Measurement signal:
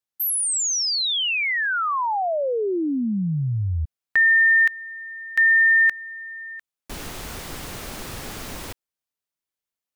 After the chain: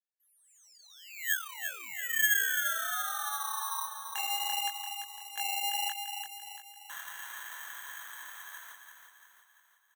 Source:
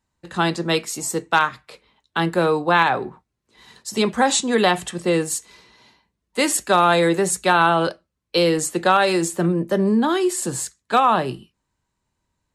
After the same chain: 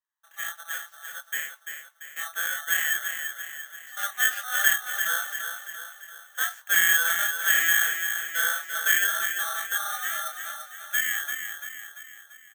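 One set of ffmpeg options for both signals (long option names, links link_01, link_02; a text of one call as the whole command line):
ffmpeg -i in.wav -filter_complex "[0:a]equalizer=frequency=890:width=0.33:gain=-3.5,aeval=exprs='val(0)*sin(2*PI*1000*n/s)':channel_layout=same,dynaudnorm=framelen=340:gausssize=17:maxgain=9dB,flanger=delay=20:depth=7.1:speed=1.5,lowpass=frequency=1700:width_type=q:width=14,asplit=2[link_01][link_02];[link_02]acrusher=samples=9:mix=1:aa=0.000001,volume=-7dB[link_03];[link_01][link_03]amix=inputs=2:normalize=0,aderivative,asplit=2[link_04][link_05];[link_05]aecho=0:1:341|682|1023|1364|1705|2046:0.447|0.228|0.116|0.0593|0.0302|0.0154[link_06];[link_04][link_06]amix=inputs=2:normalize=0,volume=-6.5dB" out.wav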